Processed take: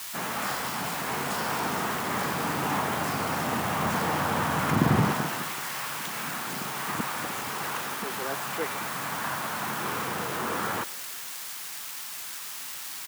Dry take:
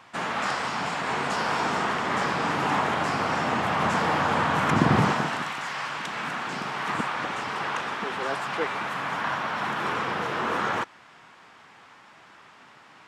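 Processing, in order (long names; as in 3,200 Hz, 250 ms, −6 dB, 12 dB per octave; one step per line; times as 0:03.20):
spike at every zero crossing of −22.5 dBFS
low-shelf EQ 290 Hz +5 dB
echo with shifted repeats 165 ms, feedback 62%, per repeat +59 Hz, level −23 dB
level −4.5 dB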